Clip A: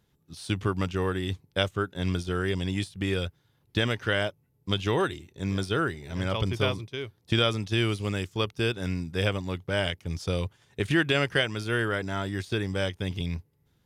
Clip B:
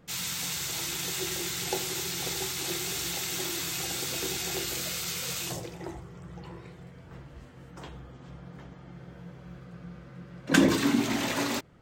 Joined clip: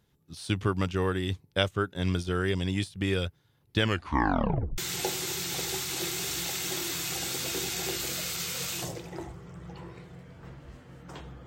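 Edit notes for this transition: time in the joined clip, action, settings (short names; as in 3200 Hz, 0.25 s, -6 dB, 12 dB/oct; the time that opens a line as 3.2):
clip A
3.79 tape stop 0.99 s
4.78 switch to clip B from 1.46 s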